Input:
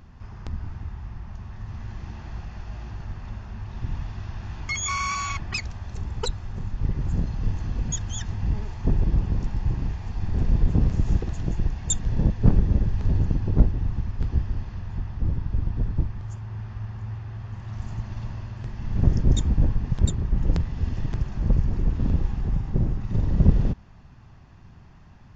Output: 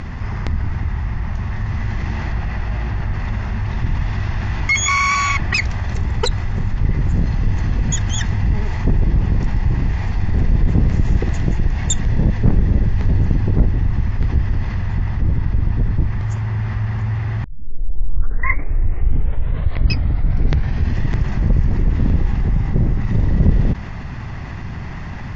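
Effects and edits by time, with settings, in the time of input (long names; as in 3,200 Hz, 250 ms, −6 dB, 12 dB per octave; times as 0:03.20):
0:02.32–0:03.14: high-shelf EQ 6,600 Hz −10.5 dB
0:17.44: tape start 3.58 s
whole clip: Bessel low-pass filter 6,300 Hz; parametric band 2,000 Hz +9 dB 0.35 octaves; envelope flattener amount 50%; level +1.5 dB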